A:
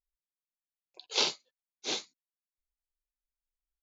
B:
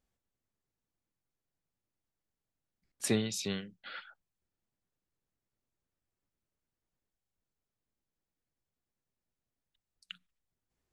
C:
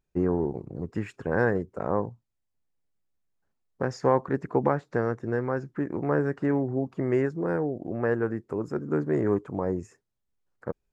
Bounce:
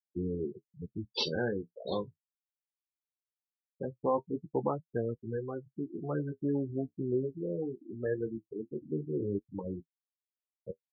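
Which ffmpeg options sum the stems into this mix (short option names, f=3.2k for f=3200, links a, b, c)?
-filter_complex "[0:a]volume=1dB[a];[2:a]volume=-3.5dB[b];[a][b]amix=inputs=2:normalize=0,afftfilt=real='re*gte(hypot(re,im),0.0891)':imag='im*gte(hypot(re,im),0.0891)':win_size=1024:overlap=0.75,flanger=delay=8.7:depth=8.4:regen=-34:speed=0.2:shape=triangular"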